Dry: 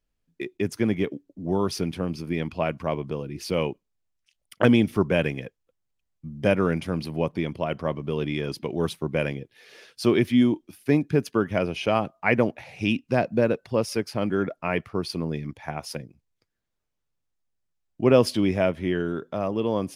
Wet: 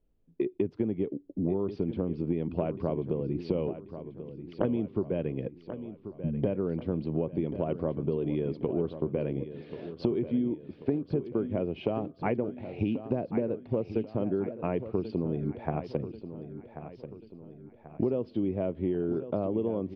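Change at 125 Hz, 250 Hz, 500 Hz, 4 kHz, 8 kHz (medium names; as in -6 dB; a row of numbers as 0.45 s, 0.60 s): -5.0 dB, -5.5 dB, -5.5 dB, -19.0 dB, under -35 dB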